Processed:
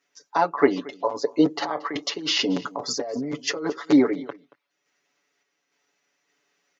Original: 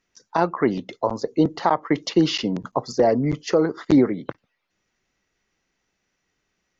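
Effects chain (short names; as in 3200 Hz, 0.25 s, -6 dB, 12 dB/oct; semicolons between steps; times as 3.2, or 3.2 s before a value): HPF 330 Hz 12 dB/oct; comb 7 ms, depth 99%; 1.62–3.7 negative-ratio compressor -25 dBFS, ratio -1; random-step tremolo; echo 0.228 s -21.5 dB; gain +1.5 dB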